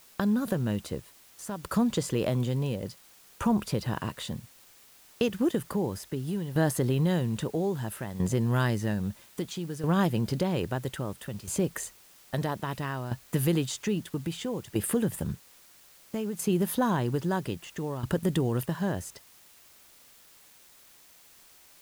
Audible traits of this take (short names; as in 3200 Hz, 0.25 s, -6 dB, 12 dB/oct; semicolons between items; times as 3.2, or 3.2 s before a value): tremolo saw down 0.61 Hz, depth 75%; a quantiser's noise floor 10-bit, dither triangular